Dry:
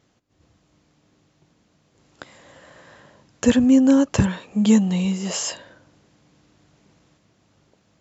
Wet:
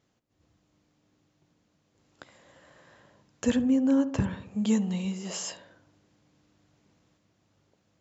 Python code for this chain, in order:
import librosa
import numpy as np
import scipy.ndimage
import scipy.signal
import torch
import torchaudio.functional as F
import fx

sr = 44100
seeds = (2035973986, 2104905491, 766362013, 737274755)

y = fx.high_shelf(x, sr, hz=3900.0, db=-9.5, at=(3.61, 4.46))
y = fx.echo_filtered(y, sr, ms=70, feedback_pct=61, hz=1100.0, wet_db=-12.5)
y = F.gain(torch.from_numpy(y), -9.0).numpy()